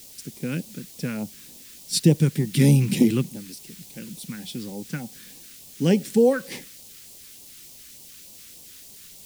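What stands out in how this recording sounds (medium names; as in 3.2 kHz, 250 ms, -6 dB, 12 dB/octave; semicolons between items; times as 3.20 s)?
a quantiser's noise floor 8-bit, dither triangular; phasing stages 2, 3.4 Hz, lowest notch 730–1500 Hz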